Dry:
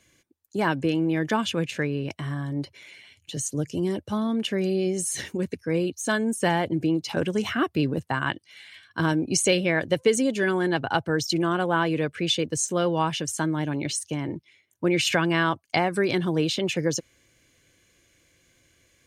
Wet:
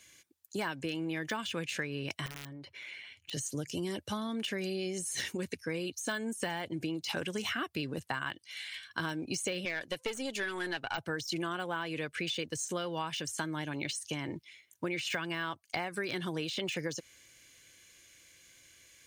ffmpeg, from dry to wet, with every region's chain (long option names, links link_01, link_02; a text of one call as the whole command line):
ffmpeg -i in.wav -filter_complex "[0:a]asettb=1/sr,asplit=3[link_01][link_02][link_03];[link_01]atrim=end=2.264[link_04];[link_02]atrim=start=2.26:end=3.33,asetpts=PTS-STARTPTS,afade=type=in:duration=0.004:curve=qsin,afade=type=out:start_time=1.066:duration=0.004:curve=qsin,bass=frequency=250:gain=-1,treble=frequency=4000:gain=-14,acompressor=threshold=-37dB:ratio=12:attack=3.2:release=140:knee=1:detection=peak,aeval=exprs='(mod(50.1*val(0)+1,2)-1)/50.1':channel_layout=same[link_05];[link_03]atrim=start=3.326[link_06];[link_04][link_05]acrossfade=duration=0.004:curve1=hsin:curve2=qsin[link_07];[link_07][link_06]acrossfade=duration=0.004:curve1=qsin:curve2=hsin,asettb=1/sr,asplit=3[link_08][link_09][link_10];[link_08]atrim=end=9.654[link_11];[link_09]atrim=start=9.65:end=10.98,asetpts=PTS-STARTPTS,afade=type=in:duration=0.004:curve=qsin,afade=type=out:start_time=1.326:duration=0.004:curve=qsin,highpass=frequency=280:poles=1,aeval=exprs='(tanh(6.31*val(0)+0.55)-tanh(0.55))/6.31':channel_layout=same[link_12];[link_10]atrim=start=10.976[link_13];[link_11][link_12]acrossfade=duration=0.004:curve1=hsin:curve2=qsin[link_14];[link_14][link_13]acrossfade=duration=0.004:curve1=qsin:curve2=hsin,deesser=0.9,tiltshelf=frequency=1200:gain=-6.5,acompressor=threshold=-32dB:ratio=6" out.wav